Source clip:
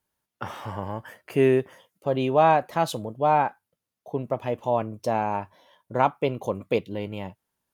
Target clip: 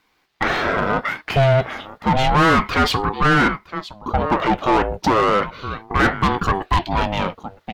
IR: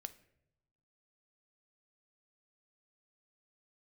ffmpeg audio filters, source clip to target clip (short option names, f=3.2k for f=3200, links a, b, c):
-filter_complex "[0:a]equalizer=f=160:t=o:w=0.67:g=6,equalizer=f=1.6k:t=o:w=0.67:g=5,equalizer=f=4k:t=o:w=0.67:g=8,equalizer=f=10k:t=o:w=0.67:g=-7,aecho=1:1:964:0.0794,asplit=2[a][b];[b]highpass=f=720:p=1,volume=30dB,asoftclip=type=tanh:threshold=-4dB[c];[a][c]amix=inputs=2:normalize=0,lowpass=f=2.1k:p=1,volume=-6dB,aeval=exprs='val(0)*sin(2*PI*440*n/s+440*0.4/0.32*sin(2*PI*0.32*n/s))':c=same"